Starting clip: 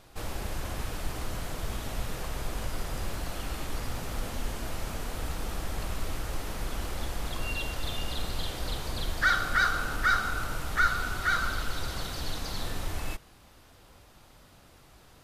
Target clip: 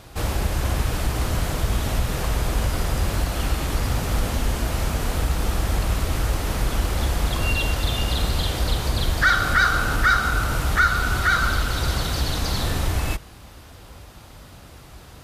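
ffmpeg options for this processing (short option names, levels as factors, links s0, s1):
-filter_complex "[0:a]highpass=53,lowshelf=f=87:g=11.5,asplit=2[s0][s1];[s1]alimiter=limit=0.075:level=0:latency=1:release=198,volume=1.26[s2];[s0][s2]amix=inputs=2:normalize=0,volume=1.41"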